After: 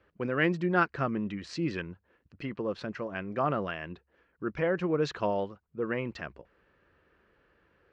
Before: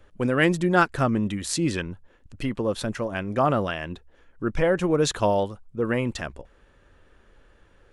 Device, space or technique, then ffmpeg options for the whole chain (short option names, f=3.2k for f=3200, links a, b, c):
guitar cabinet: -af "highpass=95,equalizer=f=110:t=q:w=4:g=-7,equalizer=f=250:t=q:w=4:g=-5,equalizer=f=580:t=q:w=4:g=-3,equalizer=f=830:t=q:w=4:g=-4,equalizer=f=3.5k:t=q:w=4:g=-9,lowpass=f=4.4k:w=0.5412,lowpass=f=4.4k:w=1.3066,volume=-5dB"